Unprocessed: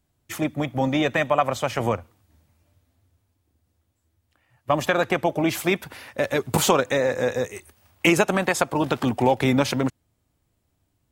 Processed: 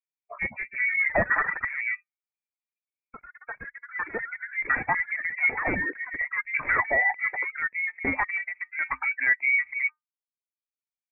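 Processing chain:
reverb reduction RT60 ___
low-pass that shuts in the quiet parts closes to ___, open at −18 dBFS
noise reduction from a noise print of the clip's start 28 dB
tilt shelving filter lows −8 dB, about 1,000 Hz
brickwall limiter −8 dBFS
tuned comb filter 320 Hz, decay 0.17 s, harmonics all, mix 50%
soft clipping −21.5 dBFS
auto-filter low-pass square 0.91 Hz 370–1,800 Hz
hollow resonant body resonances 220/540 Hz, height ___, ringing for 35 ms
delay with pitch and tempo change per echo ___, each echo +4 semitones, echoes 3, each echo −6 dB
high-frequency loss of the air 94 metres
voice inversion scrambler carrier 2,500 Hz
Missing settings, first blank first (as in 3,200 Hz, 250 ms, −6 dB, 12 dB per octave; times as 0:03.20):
1.2 s, 1,200 Hz, 12 dB, 264 ms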